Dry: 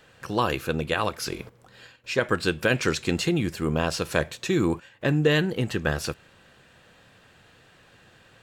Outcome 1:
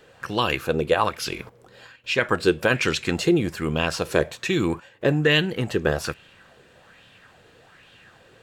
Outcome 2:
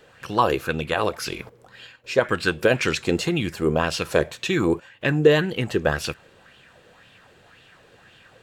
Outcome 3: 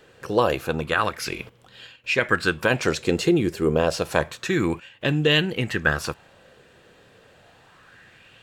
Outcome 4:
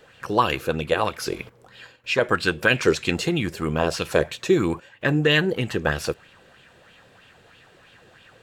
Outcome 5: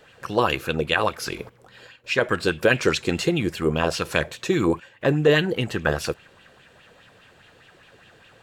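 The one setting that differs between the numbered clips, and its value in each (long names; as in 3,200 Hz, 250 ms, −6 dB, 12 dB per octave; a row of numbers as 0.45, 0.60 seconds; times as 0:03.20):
auto-filter bell, speed: 1.2, 1.9, 0.29, 3.1, 4.9 Hertz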